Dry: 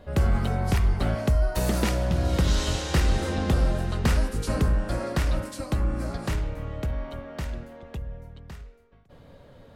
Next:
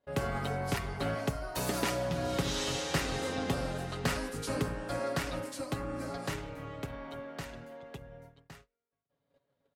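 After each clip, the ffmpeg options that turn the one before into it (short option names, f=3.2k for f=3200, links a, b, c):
-af "highpass=f=250:p=1,agate=range=-25dB:threshold=-49dB:ratio=16:detection=peak,aecho=1:1:7.2:0.53,volume=-4dB"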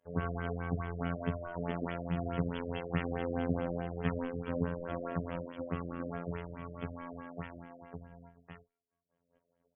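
-filter_complex "[0:a]acrossover=split=280[a][b];[b]asoftclip=type=tanh:threshold=-33dB[c];[a][c]amix=inputs=2:normalize=0,afftfilt=real='hypot(re,im)*cos(PI*b)':imag='0':win_size=2048:overlap=0.75,afftfilt=real='re*lt(b*sr/1024,620*pow(3500/620,0.5+0.5*sin(2*PI*4.7*pts/sr)))':imag='im*lt(b*sr/1024,620*pow(3500/620,0.5+0.5*sin(2*PI*4.7*pts/sr)))':win_size=1024:overlap=0.75,volume=4dB"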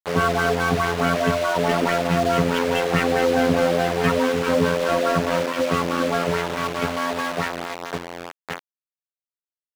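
-filter_complex "[0:a]acrusher=bits=7:mix=0:aa=0.000001,asplit=2[a][b];[b]highpass=f=720:p=1,volume=23dB,asoftclip=type=tanh:threshold=-14dB[c];[a][c]amix=inputs=2:normalize=0,lowpass=f=2.9k:p=1,volume=-6dB,volume=8dB"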